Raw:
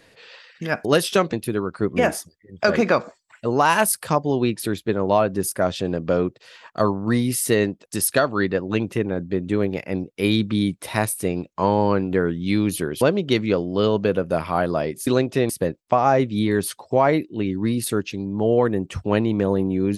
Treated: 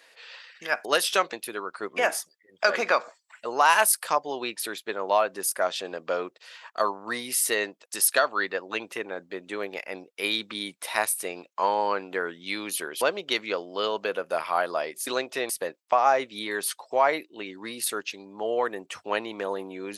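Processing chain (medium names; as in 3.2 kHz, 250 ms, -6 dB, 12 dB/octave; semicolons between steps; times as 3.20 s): high-pass 740 Hz 12 dB/octave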